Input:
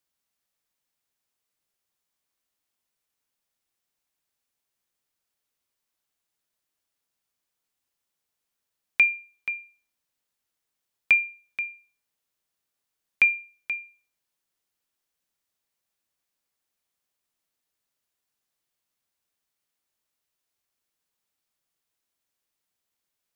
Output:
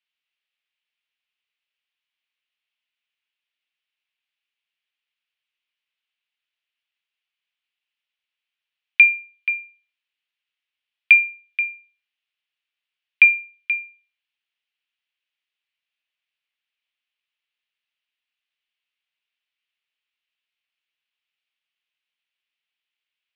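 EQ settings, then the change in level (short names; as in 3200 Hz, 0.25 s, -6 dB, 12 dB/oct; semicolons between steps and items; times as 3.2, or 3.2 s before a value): band-pass 2700 Hz, Q 1.2; air absorption 150 m; bell 2800 Hz +9.5 dB 0.99 oct; +2.0 dB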